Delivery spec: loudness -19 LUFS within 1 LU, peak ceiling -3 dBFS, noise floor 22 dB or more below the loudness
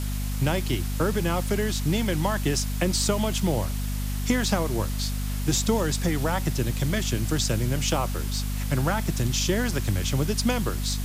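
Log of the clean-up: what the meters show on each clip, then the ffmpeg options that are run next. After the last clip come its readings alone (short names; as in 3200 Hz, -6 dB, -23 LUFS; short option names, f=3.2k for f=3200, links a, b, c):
hum 50 Hz; harmonics up to 250 Hz; hum level -26 dBFS; noise floor -28 dBFS; noise floor target -48 dBFS; loudness -26.0 LUFS; peak -10.0 dBFS; loudness target -19.0 LUFS
-> -af "bandreject=f=50:t=h:w=6,bandreject=f=100:t=h:w=6,bandreject=f=150:t=h:w=6,bandreject=f=200:t=h:w=6,bandreject=f=250:t=h:w=6"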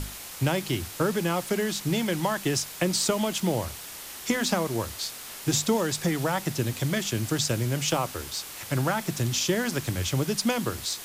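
hum none; noise floor -41 dBFS; noise floor target -50 dBFS
-> -af "afftdn=nr=9:nf=-41"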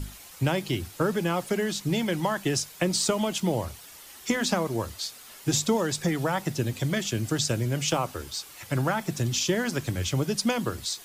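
noise floor -47 dBFS; noise floor target -50 dBFS
-> -af "afftdn=nr=6:nf=-47"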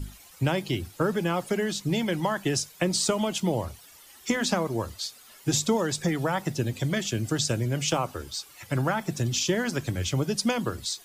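noise floor -52 dBFS; loudness -27.5 LUFS; peak -12.0 dBFS; loudness target -19.0 LUFS
-> -af "volume=8.5dB"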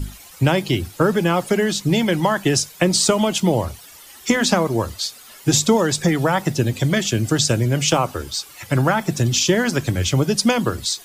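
loudness -19.0 LUFS; peak -3.5 dBFS; noise floor -43 dBFS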